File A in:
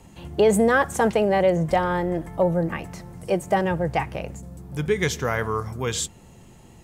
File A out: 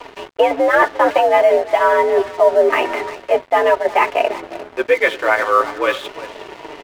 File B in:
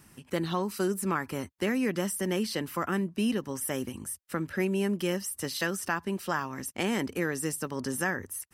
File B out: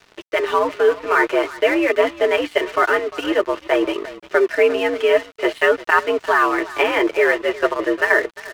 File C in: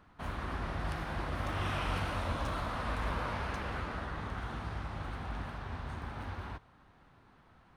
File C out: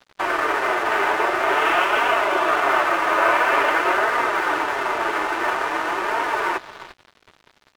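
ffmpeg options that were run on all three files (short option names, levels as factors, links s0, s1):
-filter_complex "[0:a]aecho=1:1:3.5:0.41,areverse,acompressor=threshold=0.0141:ratio=5,areverse,highpass=f=310:t=q:w=0.5412,highpass=f=310:t=q:w=1.307,lowpass=f=2900:t=q:w=0.5176,lowpass=f=2900:t=q:w=0.7071,lowpass=f=2900:t=q:w=1.932,afreqshift=75,apsyclip=31.6,flanger=delay=4:depth=5.8:regen=-12:speed=0.48:shape=triangular,asplit=2[s0][s1];[s1]adelay=350,highpass=300,lowpass=3400,asoftclip=type=hard:threshold=0.282,volume=0.251[s2];[s0][s2]amix=inputs=2:normalize=0,aeval=exprs='sgn(val(0))*max(abs(val(0))-0.0251,0)':c=same,volume=0.891"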